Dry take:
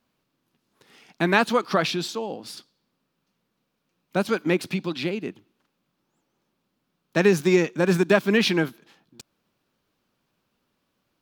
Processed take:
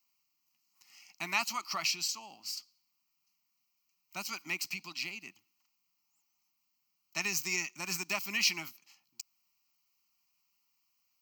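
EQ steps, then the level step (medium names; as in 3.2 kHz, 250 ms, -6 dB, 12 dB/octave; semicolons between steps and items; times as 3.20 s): pre-emphasis filter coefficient 0.97; static phaser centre 2.4 kHz, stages 8; +6.0 dB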